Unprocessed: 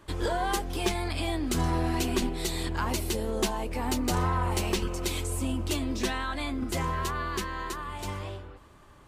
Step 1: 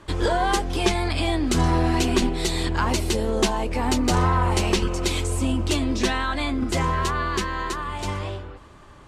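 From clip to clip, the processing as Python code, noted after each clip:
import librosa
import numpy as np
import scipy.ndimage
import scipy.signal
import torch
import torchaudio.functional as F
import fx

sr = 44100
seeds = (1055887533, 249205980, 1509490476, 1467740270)

y = scipy.signal.sosfilt(scipy.signal.butter(2, 8500.0, 'lowpass', fs=sr, output='sos'), x)
y = F.gain(torch.from_numpy(y), 7.0).numpy()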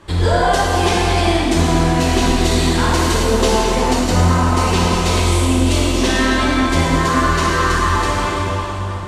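y = fx.quant_float(x, sr, bits=8)
y = fx.rev_plate(y, sr, seeds[0], rt60_s=3.8, hf_ratio=0.8, predelay_ms=0, drr_db=-7.5)
y = fx.rider(y, sr, range_db=3, speed_s=0.5)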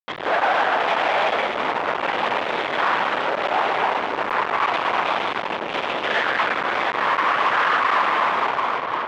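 y = fx.lpc_vocoder(x, sr, seeds[1], excitation='whisper', order=8)
y = fx.fuzz(y, sr, gain_db=24.0, gate_db=-33.0)
y = fx.bandpass_edges(y, sr, low_hz=660.0, high_hz=2300.0)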